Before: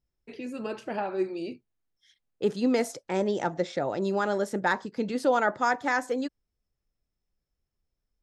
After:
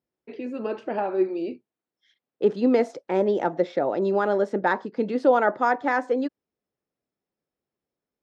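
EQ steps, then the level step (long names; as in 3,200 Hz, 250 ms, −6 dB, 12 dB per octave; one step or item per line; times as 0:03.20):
band-pass filter 280–3,900 Hz
tilt shelving filter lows +5 dB, about 930 Hz
+3.5 dB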